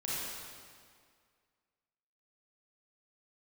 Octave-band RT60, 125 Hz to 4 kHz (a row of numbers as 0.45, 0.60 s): 2.0, 2.0, 2.0, 2.0, 1.8, 1.7 s